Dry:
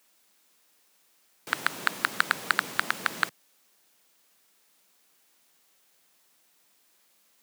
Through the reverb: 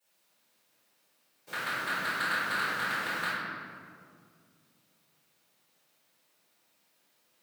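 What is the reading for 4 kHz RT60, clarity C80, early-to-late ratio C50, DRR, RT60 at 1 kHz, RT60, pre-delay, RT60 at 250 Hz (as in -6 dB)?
1.2 s, -1.0 dB, -3.5 dB, -20.0 dB, 1.9 s, 2.1 s, 3 ms, 2.9 s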